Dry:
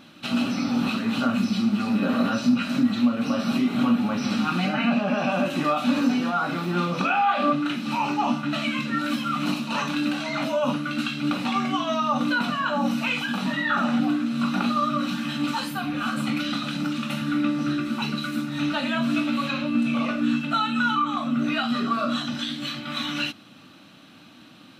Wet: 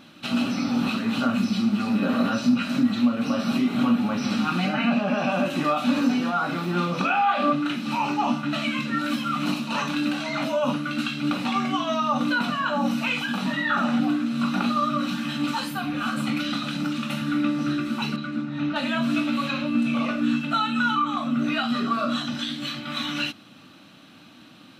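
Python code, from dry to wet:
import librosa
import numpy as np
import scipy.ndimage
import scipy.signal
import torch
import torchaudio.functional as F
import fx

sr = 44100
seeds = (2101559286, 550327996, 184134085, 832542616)

y = fx.spacing_loss(x, sr, db_at_10k=23, at=(18.16, 18.76))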